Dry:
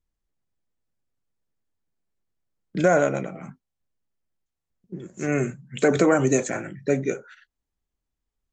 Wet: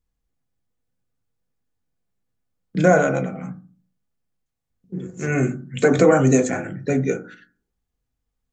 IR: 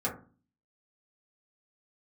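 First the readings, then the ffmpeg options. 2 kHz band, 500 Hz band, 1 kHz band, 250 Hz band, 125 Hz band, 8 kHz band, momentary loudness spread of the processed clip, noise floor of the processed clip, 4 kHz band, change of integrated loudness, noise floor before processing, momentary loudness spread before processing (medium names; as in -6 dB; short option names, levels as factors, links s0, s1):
+3.5 dB, +3.5 dB, +3.5 dB, +4.5 dB, +6.5 dB, +1.5 dB, 19 LU, -80 dBFS, +1.5 dB, +3.5 dB, -84 dBFS, 18 LU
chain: -filter_complex "[0:a]asplit=2[s0][s1];[1:a]atrim=start_sample=2205,lowshelf=f=130:g=9[s2];[s1][s2]afir=irnorm=-1:irlink=0,volume=0.376[s3];[s0][s3]amix=inputs=2:normalize=0,volume=0.891"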